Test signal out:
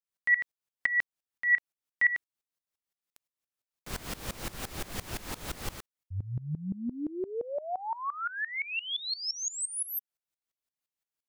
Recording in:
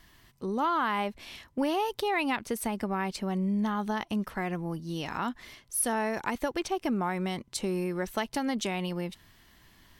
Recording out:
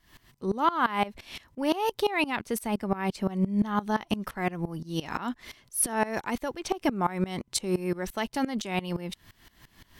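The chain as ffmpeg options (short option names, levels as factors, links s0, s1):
-af "aeval=exprs='val(0)*pow(10,-20*if(lt(mod(-5.8*n/s,1),2*abs(-5.8)/1000),1-mod(-5.8*n/s,1)/(2*abs(-5.8)/1000),(mod(-5.8*n/s,1)-2*abs(-5.8)/1000)/(1-2*abs(-5.8)/1000))/20)':c=same,volume=2.66"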